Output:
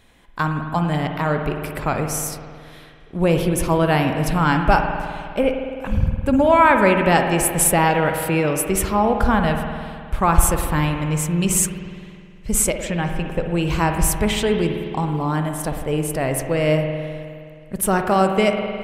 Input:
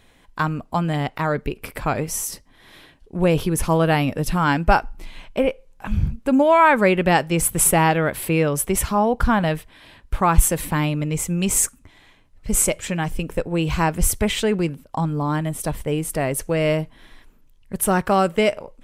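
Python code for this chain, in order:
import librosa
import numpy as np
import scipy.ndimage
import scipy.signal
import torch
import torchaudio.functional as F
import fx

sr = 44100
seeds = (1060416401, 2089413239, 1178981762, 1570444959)

y = fx.high_shelf(x, sr, hz=fx.line((12.83, 10000.0), (13.42, 5300.0)), db=-11.5, at=(12.83, 13.42), fade=0.02)
y = fx.rev_spring(y, sr, rt60_s=2.2, pass_ms=(52,), chirp_ms=65, drr_db=4.5)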